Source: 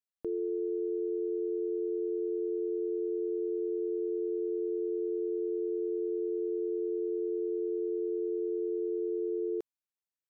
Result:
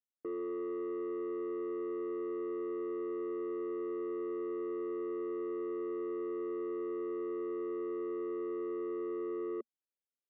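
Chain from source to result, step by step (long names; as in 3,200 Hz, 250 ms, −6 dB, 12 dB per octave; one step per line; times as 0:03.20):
Chebyshev band-pass filter 230–570 Hz, order 3
soft clipping −34 dBFS, distortion −13 dB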